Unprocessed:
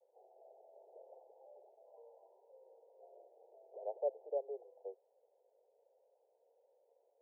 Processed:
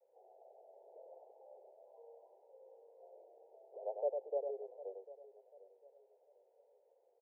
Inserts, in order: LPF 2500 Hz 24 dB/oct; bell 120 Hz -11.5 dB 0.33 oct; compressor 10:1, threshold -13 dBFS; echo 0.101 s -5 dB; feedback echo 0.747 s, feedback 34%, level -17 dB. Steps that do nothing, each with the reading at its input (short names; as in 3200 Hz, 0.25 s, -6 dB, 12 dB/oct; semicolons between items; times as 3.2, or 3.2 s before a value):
LPF 2500 Hz: input band ends at 910 Hz; bell 120 Hz: input band starts at 360 Hz; compressor, threshold -13 dBFS: input peak -25.5 dBFS